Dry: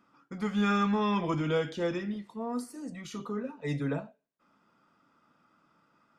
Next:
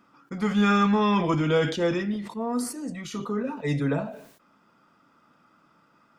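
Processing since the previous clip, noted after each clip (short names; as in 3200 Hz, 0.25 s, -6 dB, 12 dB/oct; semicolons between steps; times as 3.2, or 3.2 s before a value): sustainer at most 86 dB/s; gain +6 dB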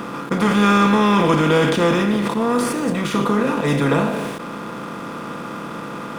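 per-bin compression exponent 0.4; backlash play -38.5 dBFS; gain +3.5 dB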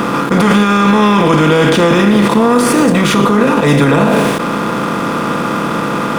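maximiser +15 dB; gain -1 dB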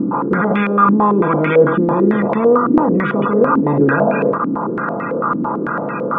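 loudest bins only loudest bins 64; pre-echo 0.282 s -17 dB; stepped low-pass 9 Hz 290–2200 Hz; gain -7.5 dB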